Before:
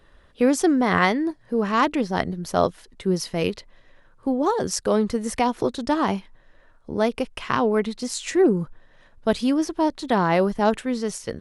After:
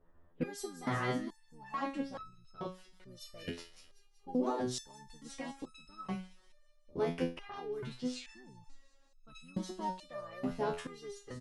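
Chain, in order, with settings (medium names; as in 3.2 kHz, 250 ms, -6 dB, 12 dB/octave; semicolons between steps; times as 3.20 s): level-controlled noise filter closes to 1 kHz, open at -20 dBFS; harmony voices -7 st -3 dB, -4 st -16 dB; peak limiter -11 dBFS, peak gain reduction 9 dB; on a send: feedback echo behind a high-pass 188 ms, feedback 64%, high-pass 4.1 kHz, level -10.5 dB; on the sum: resonator arpeggio 2.3 Hz 85–1300 Hz; trim -2.5 dB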